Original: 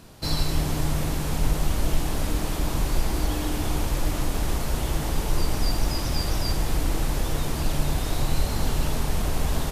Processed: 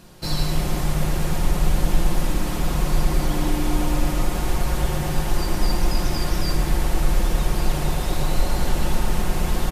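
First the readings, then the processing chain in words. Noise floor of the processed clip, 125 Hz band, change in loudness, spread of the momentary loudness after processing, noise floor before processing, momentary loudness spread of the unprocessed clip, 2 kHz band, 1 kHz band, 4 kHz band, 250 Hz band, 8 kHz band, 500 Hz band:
-26 dBFS, +2.5 dB, +3.0 dB, 2 LU, -29 dBFS, 2 LU, +3.0 dB, +3.5 dB, +1.0 dB, +3.5 dB, +1.0 dB, +3.0 dB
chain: comb 5.6 ms, depth 47%; on a send: analogue delay 0.113 s, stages 2048, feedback 81%, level -5.5 dB

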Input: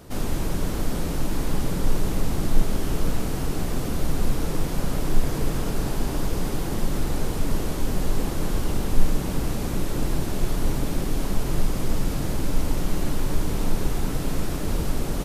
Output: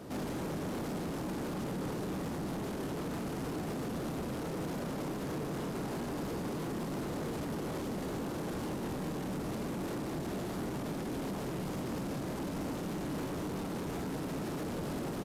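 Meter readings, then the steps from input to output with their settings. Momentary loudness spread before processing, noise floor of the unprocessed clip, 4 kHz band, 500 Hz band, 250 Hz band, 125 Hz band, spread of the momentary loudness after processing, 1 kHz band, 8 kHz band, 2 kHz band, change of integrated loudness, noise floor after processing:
1 LU, -28 dBFS, -10.5 dB, -6.0 dB, -6.5 dB, -12.0 dB, 0 LU, -6.5 dB, -13.0 dB, -8.0 dB, -9.0 dB, -38 dBFS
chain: HPF 200 Hz 12 dB/oct; tilt -2 dB/oct; limiter -24 dBFS, peak gain reduction 8.5 dB; soft clip -34 dBFS, distortion -11 dB; doubler 26 ms -11.5 dB

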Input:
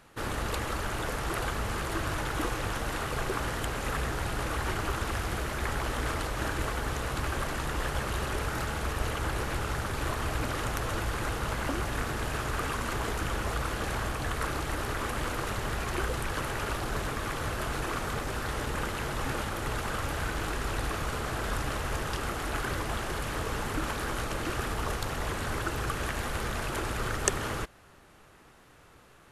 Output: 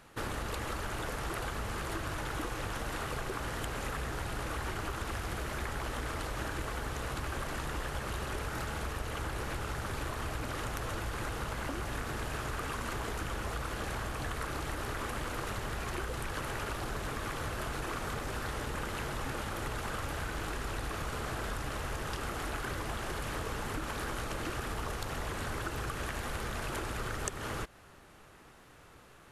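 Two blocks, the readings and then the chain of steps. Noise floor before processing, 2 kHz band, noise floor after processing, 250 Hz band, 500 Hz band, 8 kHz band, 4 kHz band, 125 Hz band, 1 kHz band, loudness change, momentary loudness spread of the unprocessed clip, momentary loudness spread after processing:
-56 dBFS, -5.0 dB, -56 dBFS, -5.0 dB, -5.0 dB, -5.5 dB, -5.0 dB, -5.0 dB, -5.0 dB, -5.0 dB, 1 LU, 1 LU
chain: compressor, threshold -33 dBFS, peak gain reduction 13 dB

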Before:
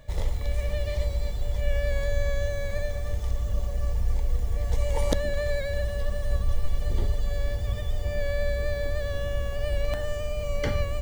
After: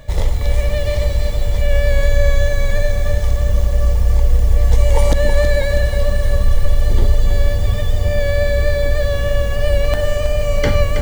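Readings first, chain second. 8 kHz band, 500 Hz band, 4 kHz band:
+11.5 dB, +11.5 dB, +11.5 dB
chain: maximiser +14 dB; lo-fi delay 0.322 s, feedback 55%, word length 6-bit, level -8 dB; gain -3 dB

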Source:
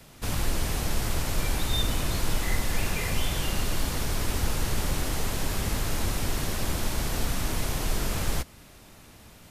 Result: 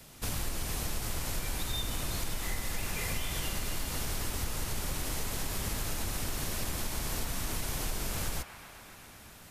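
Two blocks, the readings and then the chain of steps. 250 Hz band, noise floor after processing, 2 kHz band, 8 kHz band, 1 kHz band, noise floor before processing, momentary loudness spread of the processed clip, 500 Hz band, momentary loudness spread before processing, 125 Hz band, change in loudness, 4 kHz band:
-7.5 dB, -51 dBFS, -5.5 dB, -3.0 dB, -6.5 dB, -51 dBFS, 3 LU, -7.5 dB, 2 LU, -8.0 dB, -5.5 dB, -5.0 dB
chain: high shelf 4700 Hz +6.5 dB; compressor, threshold -26 dBFS, peak gain reduction 8 dB; on a send: band-limited delay 0.131 s, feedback 83%, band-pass 1400 Hz, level -9.5 dB; on the sum: gain -3.5 dB

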